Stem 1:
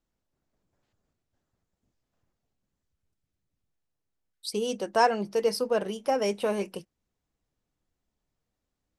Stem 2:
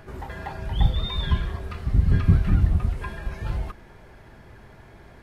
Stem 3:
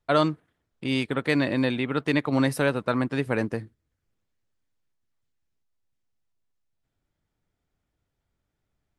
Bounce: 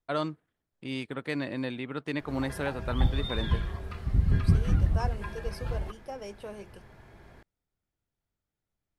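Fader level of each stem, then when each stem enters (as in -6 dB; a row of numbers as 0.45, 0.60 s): -14.0, -5.0, -9.0 dB; 0.00, 2.20, 0.00 s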